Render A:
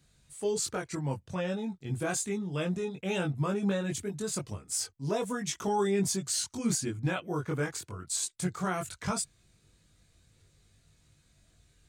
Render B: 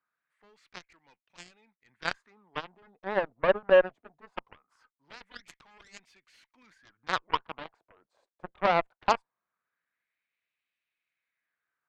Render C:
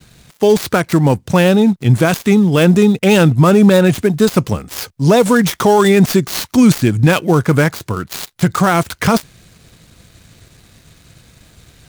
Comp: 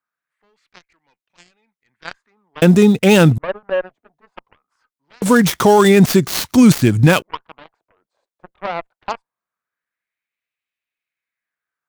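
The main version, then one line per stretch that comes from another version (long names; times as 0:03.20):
B
0:02.62–0:03.38: punch in from C
0:05.22–0:07.22: punch in from C
not used: A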